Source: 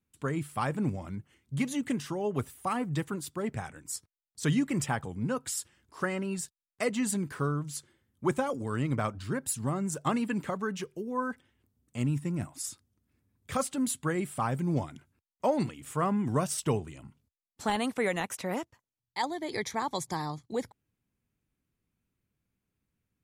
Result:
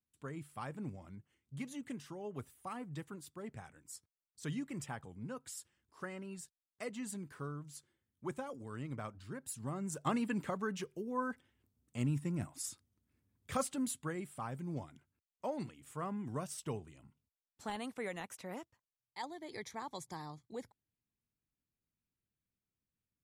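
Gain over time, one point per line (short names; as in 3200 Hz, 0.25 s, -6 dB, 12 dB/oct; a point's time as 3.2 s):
9.39 s -13 dB
10.14 s -5 dB
13.65 s -5 dB
14.3 s -12 dB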